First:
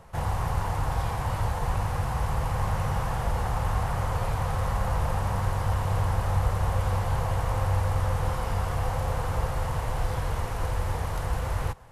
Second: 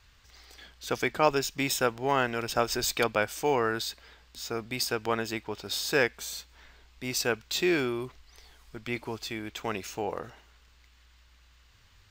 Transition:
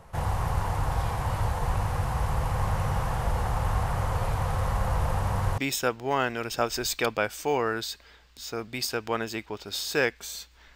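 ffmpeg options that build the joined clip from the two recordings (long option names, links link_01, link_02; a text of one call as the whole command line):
ffmpeg -i cue0.wav -i cue1.wav -filter_complex "[0:a]apad=whole_dur=10.75,atrim=end=10.75,atrim=end=5.582[link_01];[1:a]atrim=start=1.558:end=6.73[link_02];[link_01][link_02]acrossfade=duration=0.004:curve1=hsin:curve2=hsin" out.wav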